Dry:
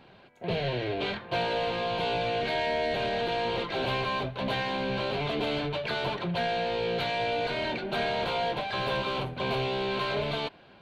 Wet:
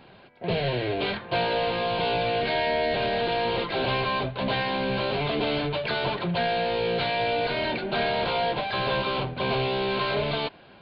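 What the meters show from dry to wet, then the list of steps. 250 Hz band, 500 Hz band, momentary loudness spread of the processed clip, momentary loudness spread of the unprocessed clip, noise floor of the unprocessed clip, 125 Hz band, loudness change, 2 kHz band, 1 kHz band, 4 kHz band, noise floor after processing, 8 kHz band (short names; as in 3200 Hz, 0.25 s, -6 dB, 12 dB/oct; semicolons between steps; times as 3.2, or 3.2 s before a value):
+3.5 dB, +3.5 dB, 3 LU, 3 LU, -55 dBFS, +3.5 dB, +3.5 dB, +3.5 dB, +3.5 dB, +3.5 dB, -51 dBFS, n/a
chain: downsampling 11025 Hz; gain +3.5 dB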